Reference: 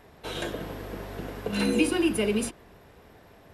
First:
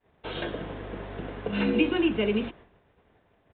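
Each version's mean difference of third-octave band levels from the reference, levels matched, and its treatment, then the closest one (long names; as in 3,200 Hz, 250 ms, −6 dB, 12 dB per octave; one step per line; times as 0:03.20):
6.5 dB: downward expander −44 dBFS
downsampling to 8,000 Hz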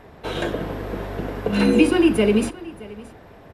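3.0 dB: high-shelf EQ 3,600 Hz −11 dB
on a send: single-tap delay 623 ms −20 dB
on the sum: level +8.5 dB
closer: second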